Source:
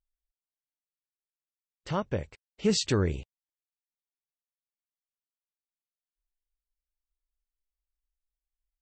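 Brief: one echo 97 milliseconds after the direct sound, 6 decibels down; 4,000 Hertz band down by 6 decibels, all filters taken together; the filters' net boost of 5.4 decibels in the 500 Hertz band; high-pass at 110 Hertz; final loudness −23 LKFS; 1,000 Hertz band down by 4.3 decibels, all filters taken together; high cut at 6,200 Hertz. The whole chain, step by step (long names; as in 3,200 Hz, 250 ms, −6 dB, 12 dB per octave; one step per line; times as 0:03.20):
high-pass filter 110 Hz
low-pass filter 6,200 Hz
parametric band 500 Hz +8 dB
parametric band 1,000 Hz −7.5 dB
parametric band 4,000 Hz −6 dB
single-tap delay 97 ms −6 dB
level +4 dB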